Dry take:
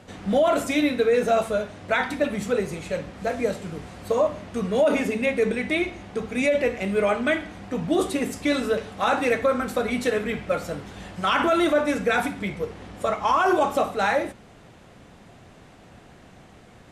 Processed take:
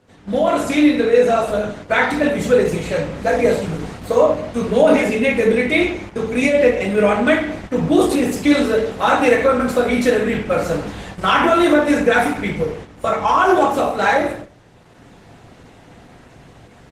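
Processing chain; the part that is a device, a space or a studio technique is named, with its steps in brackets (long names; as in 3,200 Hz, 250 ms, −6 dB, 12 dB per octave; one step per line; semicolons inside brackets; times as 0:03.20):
0:01.00–0:02.00: double-tracking delay 14 ms −11 dB
speakerphone in a meeting room (convolution reverb RT60 0.55 s, pre-delay 5 ms, DRR 0 dB; far-end echo of a speakerphone 240 ms, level −24 dB; automatic gain control gain up to 12.5 dB; noise gate −29 dBFS, range −8 dB; level −1 dB; Opus 16 kbit/s 48,000 Hz)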